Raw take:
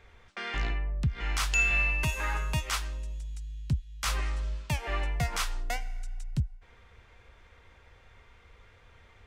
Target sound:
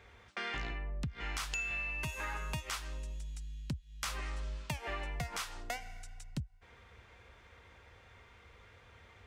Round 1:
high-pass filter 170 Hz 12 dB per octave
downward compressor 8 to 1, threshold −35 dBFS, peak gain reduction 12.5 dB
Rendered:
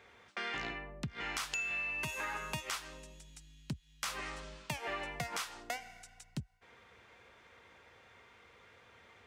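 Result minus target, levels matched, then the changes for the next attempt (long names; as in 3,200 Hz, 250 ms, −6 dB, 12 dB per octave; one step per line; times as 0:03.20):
125 Hz band −5.5 dB
change: high-pass filter 62 Hz 12 dB per octave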